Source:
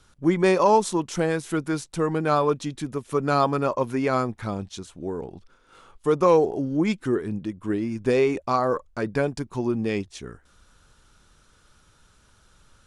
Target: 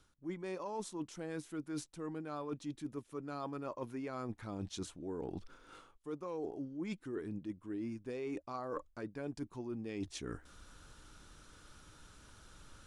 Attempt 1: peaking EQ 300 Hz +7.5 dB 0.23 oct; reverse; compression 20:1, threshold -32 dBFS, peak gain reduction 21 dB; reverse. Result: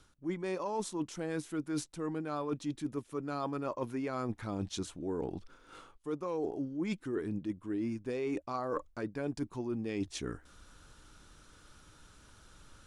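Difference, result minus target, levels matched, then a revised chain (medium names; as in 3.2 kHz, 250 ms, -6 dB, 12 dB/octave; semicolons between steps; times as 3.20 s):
compression: peak gain reduction -5.5 dB
peaking EQ 300 Hz +7.5 dB 0.23 oct; reverse; compression 20:1, threshold -38 dBFS, peak gain reduction 26.5 dB; reverse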